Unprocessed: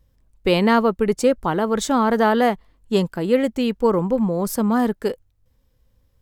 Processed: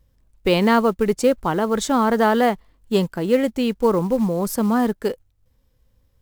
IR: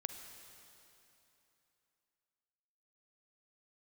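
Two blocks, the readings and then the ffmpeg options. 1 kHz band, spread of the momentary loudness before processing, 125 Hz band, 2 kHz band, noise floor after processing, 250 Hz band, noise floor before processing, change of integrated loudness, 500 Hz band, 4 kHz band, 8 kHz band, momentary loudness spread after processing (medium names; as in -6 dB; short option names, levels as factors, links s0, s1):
0.0 dB, 6 LU, 0.0 dB, 0.0 dB, -62 dBFS, 0.0 dB, -62 dBFS, 0.0 dB, 0.0 dB, 0.0 dB, +0.5 dB, 6 LU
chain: -af "acrusher=bits=7:mode=log:mix=0:aa=0.000001"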